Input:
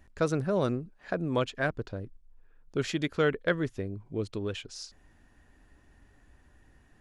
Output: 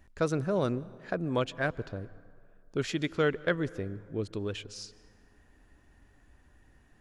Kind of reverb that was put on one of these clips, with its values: plate-style reverb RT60 2.1 s, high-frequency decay 0.5×, pre-delay 120 ms, DRR 20 dB; trim -1 dB

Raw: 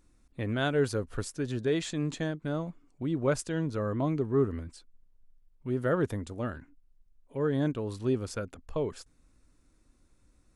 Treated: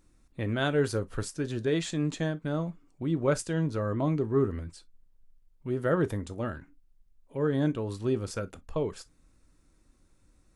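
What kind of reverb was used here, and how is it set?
gated-style reverb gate 80 ms falling, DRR 11.5 dB; trim +1 dB

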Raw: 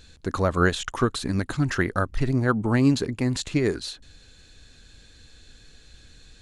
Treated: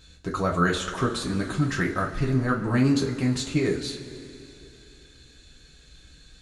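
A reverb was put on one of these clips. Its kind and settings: two-slope reverb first 0.24 s, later 3.1 s, from -19 dB, DRR -2 dB; trim -5 dB

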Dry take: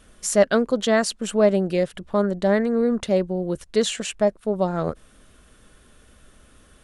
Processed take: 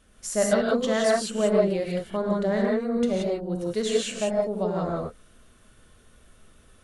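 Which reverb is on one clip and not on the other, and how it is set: gated-style reverb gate 200 ms rising, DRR -3 dB; trim -8 dB

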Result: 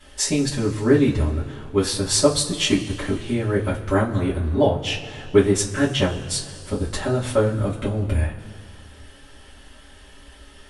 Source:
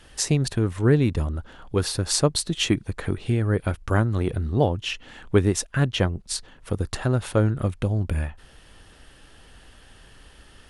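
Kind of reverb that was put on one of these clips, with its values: two-slope reverb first 0.2 s, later 2.3 s, from -21 dB, DRR -9 dB; trim -6 dB

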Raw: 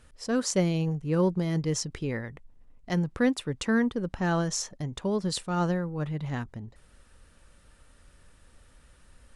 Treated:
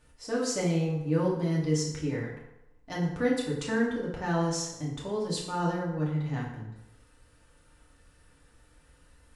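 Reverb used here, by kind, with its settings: FDN reverb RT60 0.9 s, low-frequency decay 0.8×, high-frequency decay 0.7×, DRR -5 dB; trim -7.5 dB

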